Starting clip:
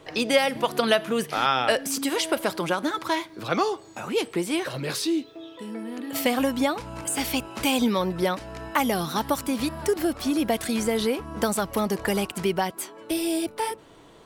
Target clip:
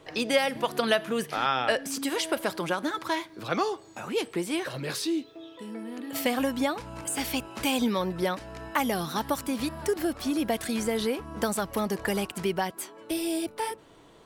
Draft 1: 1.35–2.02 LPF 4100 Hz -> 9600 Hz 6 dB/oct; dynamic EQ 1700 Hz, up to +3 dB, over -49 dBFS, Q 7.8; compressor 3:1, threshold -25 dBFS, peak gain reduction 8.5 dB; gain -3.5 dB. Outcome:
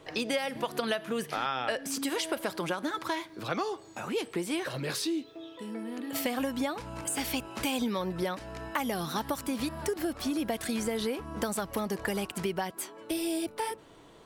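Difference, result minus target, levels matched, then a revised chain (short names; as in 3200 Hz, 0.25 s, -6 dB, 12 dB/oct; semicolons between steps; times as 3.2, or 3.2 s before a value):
compressor: peak gain reduction +8.5 dB
1.35–2.02 LPF 4100 Hz -> 9600 Hz 6 dB/oct; dynamic EQ 1700 Hz, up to +3 dB, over -49 dBFS, Q 7.8; gain -3.5 dB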